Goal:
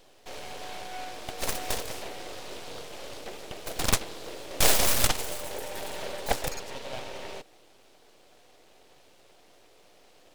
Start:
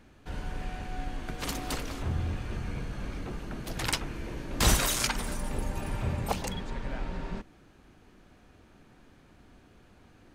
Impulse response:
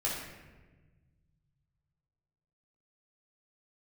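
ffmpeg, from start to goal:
-filter_complex "[0:a]highpass=f=490:w=0.5412,highpass=f=490:w=1.3066,acrossover=split=760[a][b];[b]aeval=exprs='abs(val(0))':c=same[c];[a][c]amix=inputs=2:normalize=0,volume=8.5dB"

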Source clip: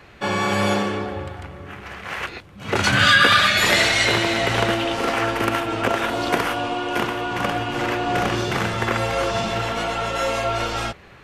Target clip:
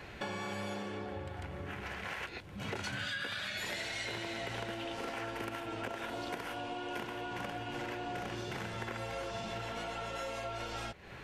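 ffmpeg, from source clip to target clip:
-af "bandreject=f=1.2k:w=8.2,acompressor=threshold=-37dB:ratio=6,volume=-1.5dB"

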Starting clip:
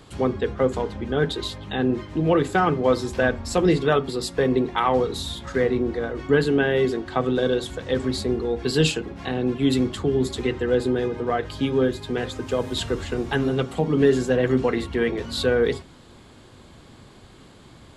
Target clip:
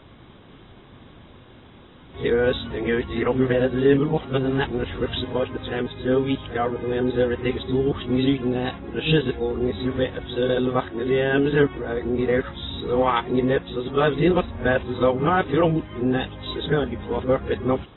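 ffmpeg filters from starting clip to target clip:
-af "areverse" -ar 22050 -c:a aac -b:a 16k

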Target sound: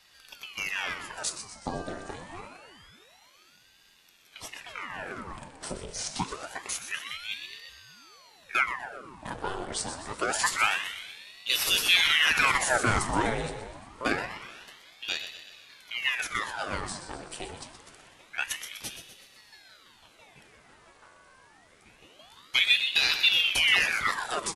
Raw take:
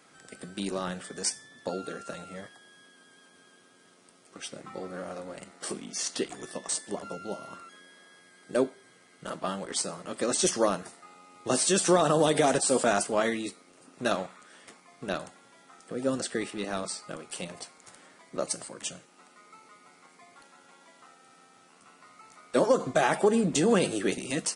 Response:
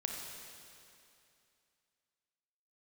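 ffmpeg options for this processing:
-filter_complex "[0:a]aecho=1:1:124|248|372|496|620:0.316|0.158|0.0791|0.0395|0.0198,asplit=2[a][b];[1:a]atrim=start_sample=2205,lowpass=6k[c];[b][c]afir=irnorm=-1:irlink=0,volume=-9.5dB[d];[a][d]amix=inputs=2:normalize=0,aeval=exprs='val(0)*sin(2*PI*1700*n/s+1700*0.9/0.26*sin(2*PI*0.26*n/s))':c=same"

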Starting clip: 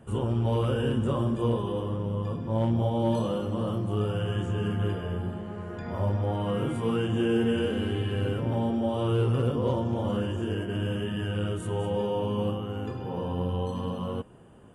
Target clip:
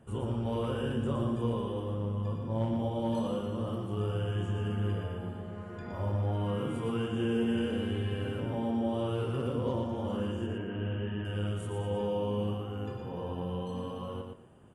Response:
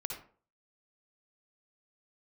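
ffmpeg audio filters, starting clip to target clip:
-filter_complex "[0:a]asettb=1/sr,asplit=3[a][b][c];[a]atrim=end=10.464[d];[b]atrim=start=10.46:end=11.25,asetpts=PTS-STARTPTS,afade=t=in:d=0.004:c=qsin,afade=t=out:st=0.786:d=0.004:c=qsin,lowpass=f=2.9k:w=0.5412,lowpass=f=2.9k:w=1.3066[e];[c]atrim=start=11.246[f];[d][e]acrossfade=d=0.004:c1=hsin:c2=qsin[g];[g][f]acrossfade=d=0.004:c1=qsin:c2=hsin,aecho=1:1:117|234|351:0.562|0.129|0.0297,volume=-6dB"

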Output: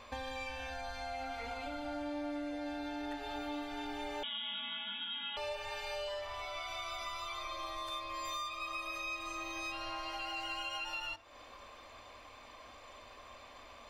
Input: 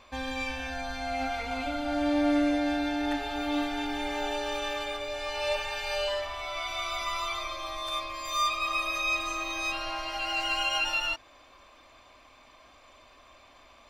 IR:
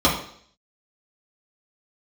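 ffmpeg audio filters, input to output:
-filter_complex "[0:a]acompressor=threshold=-42dB:ratio=4,asplit=2[a][b];[1:a]atrim=start_sample=2205,asetrate=70560,aresample=44100[c];[b][c]afir=irnorm=-1:irlink=0,volume=-26dB[d];[a][d]amix=inputs=2:normalize=0,asettb=1/sr,asplit=3[e][f][g];[e]atrim=end=4.234[h];[f]atrim=start=4.23:end=5.37,asetpts=PTS-STARTPTS,afade=t=in:d=0.004:c=qsin,afade=t=out:st=1.136:d=0.004:c=qsin,lowpass=f=3.2k:t=q:w=0.5098,lowpass=f=3.2k:t=q:w=0.6013,lowpass=f=3.2k:t=q:w=0.9,lowpass=f=3.2k:t=q:w=2.563,afreqshift=-3800[i];[g]atrim=start=5.366[j];[h][i]acrossfade=d=0.004:c1=hsin:c2=qsin[k];[k][j]acrossfade=d=0.004:c1=qsin:c2=hsin,volume=1dB"

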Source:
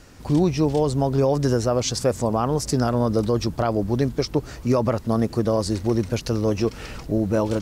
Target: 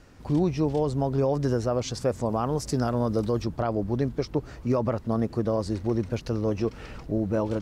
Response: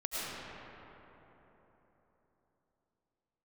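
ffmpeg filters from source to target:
-af "asetnsamples=n=441:p=0,asendcmd='2.29 highshelf g -4;3.42 highshelf g -11.5',highshelf=f=4.2k:g=-9,volume=-4.5dB"

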